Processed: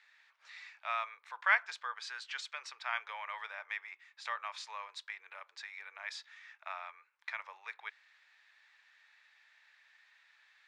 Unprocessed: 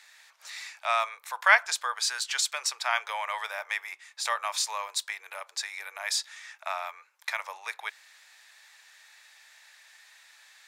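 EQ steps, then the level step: low-pass 2.7 kHz 12 dB/octave; peaking EQ 650 Hz -8 dB 1.3 oct; -6.0 dB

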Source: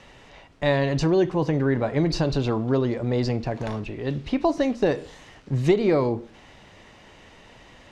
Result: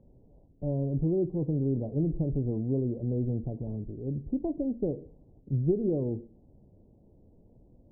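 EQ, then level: Gaussian low-pass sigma 18 samples; distance through air 440 m; -3.0 dB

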